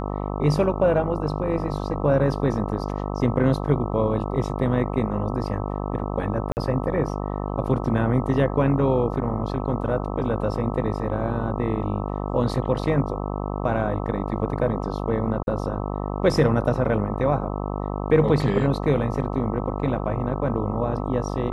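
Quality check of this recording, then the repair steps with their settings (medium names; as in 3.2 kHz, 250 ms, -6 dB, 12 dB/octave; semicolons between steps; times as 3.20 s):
buzz 50 Hz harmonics 26 -28 dBFS
6.52–6.57 s: dropout 49 ms
15.43–15.47 s: dropout 41 ms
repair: de-hum 50 Hz, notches 26; interpolate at 6.52 s, 49 ms; interpolate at 15.43 s, 41 ms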